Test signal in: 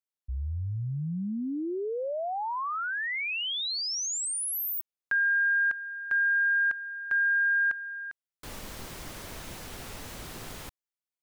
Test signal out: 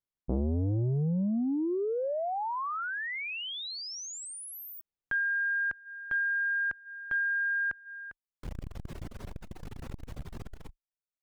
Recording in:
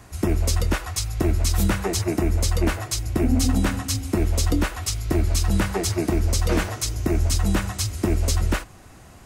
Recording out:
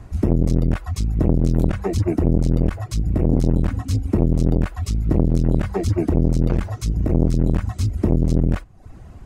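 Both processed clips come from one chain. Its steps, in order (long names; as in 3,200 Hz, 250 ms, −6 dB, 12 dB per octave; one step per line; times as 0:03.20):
reverb reduction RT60 0.54 s
spectral tilt −3 dB per octave
saturating transformer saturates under 300 Hz
level −1 dB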